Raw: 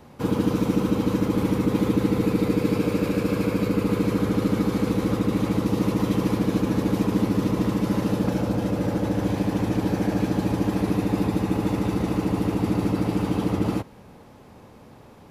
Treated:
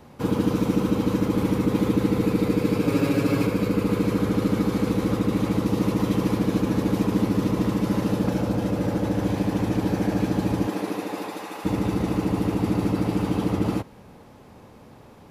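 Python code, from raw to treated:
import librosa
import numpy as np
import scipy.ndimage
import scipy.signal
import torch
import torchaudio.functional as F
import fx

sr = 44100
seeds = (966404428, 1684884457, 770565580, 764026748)

y = fx.comb(x, sr, ms=7.3, depth=0.9, at=(2.87, 3.47))
y = fx.highpass(y, sr, hz=fx.line((10.66, 250.0), (11.64, 830.0)), slope=12, at=(10.66, 11.64), fade=0.02)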